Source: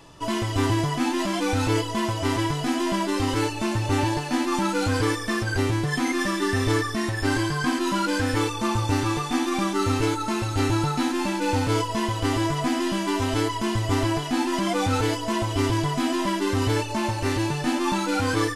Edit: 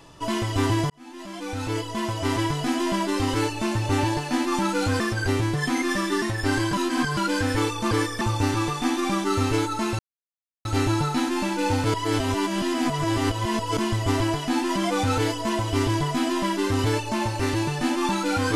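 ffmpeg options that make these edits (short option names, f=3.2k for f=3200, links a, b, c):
-filter_complex "[0:a]asplit=11[a][b][c][d][e][f][g][h][i][j][k];[a]atrim=end=0.9,asetpts=PTS-STARTPTS,afade=t=out:st=0.896:d=0.004:c=hsin[l];[b]atrim=start=0.9:end=5.002,asetpts=PTS-STARTPTS,afade=t=in:d=1.47[m];[c]atrim=start=5.298:end=6.522[n];[d]atrim=start=7.008:end=7.522[o];[e]atrim=start=7.518:end=7.962,asetpts=PTS-STARTPTS,areverse[p];[f]atrim=start=7.958:end=8.702[q];[g]atrim=start=4.998:end=5.302[r];[h]atrim=start=8.698:end=10.48,asetpts=PTS-STARTPTS,afade=t=out:st=1.778:d=0.004:c=hsin,apad=pad_dur=0.66[s];[i]atrim=start=10.48:end=11.772,asetpts=PTS-STARTPTS,afade=t=in:d=0.004:c=hsin[t];[j]atrim=start=11.768:end=13.602,asetpts=PTS-STARTPTS,areverse[u];[k]atrim=start=13.598[v];[l][m]concat=n=2:v=0:a=1[w];[w][n]acrossfade=d=0.004:c1=hsin:c2=hsin[x];[x][o]acrossfade=d=0.004:c1=hsin:c2=hsin[y];[y][p]acrossfade=d=0.004:c1=hsin:c2=hsin[z];[z][q]acrossfade=d=0.004:c1=hsin:c2=hsin[aa];[aa][r]acrossfade=d=0.004:c1=hsin:c2=hsin[ab];[s][t]concat=n=2:v=0:a=1[ac];[ab][ac]acrossfade=d=0.004:c1=hsin:c2=hsin[ad];[ad][u]acrossfade=d=0.004:c1=hsin:c2=hsin[ae];[ae][v]acrossfade=d=0.004:c1=hsin:c2=hsin"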